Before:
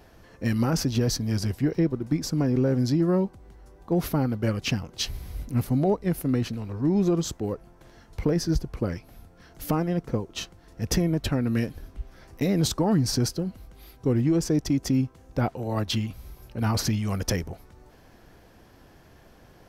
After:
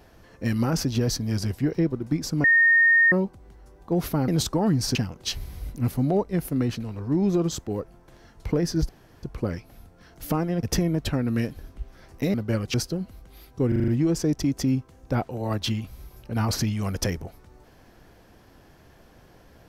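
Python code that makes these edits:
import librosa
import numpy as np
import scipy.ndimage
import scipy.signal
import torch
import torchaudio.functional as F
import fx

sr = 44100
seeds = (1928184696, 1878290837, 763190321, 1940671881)

y = fx.edit(x, sr, fx.bleep(start_s=2.44, length_s=0.68, hz=1840.0, db=-14.0),
    fx.swap(start_s=4.28, length_s=0.4, other_s=12.53, other_length_s=0.67),
    fx.insert_room_tone(at_s=8.62, length_s=0.34),
    fx.cut(start_s=10.02, length_s=0.8),
    fx.stutter(start_s=14.14, slice_s=0.04, count=6), tone=tone)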